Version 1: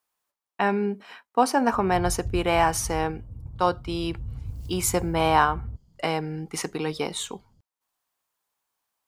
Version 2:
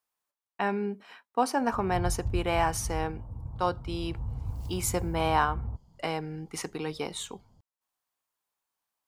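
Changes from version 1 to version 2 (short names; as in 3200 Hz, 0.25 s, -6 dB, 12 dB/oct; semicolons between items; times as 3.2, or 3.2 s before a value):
speech -5.5 dB; background: add bell 900 Hz +14 dB 1 oct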